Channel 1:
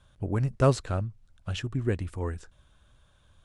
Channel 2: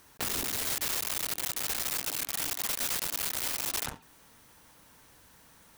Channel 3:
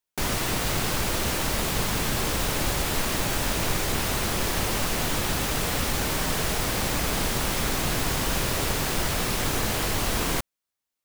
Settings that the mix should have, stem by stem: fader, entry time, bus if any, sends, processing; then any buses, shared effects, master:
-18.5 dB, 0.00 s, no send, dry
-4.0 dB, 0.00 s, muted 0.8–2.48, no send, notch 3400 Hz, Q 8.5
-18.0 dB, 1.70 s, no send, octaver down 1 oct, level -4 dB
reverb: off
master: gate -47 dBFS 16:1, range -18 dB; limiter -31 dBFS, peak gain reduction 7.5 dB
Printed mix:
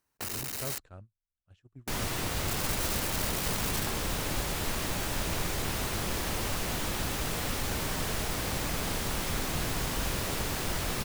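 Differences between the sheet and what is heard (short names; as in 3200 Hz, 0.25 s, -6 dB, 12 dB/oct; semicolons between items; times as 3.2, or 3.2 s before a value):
stem 3 -18.0 dB -> -6.5 dB; master: missing limiter -31 dBFS, peak gain reduction 7.5 dB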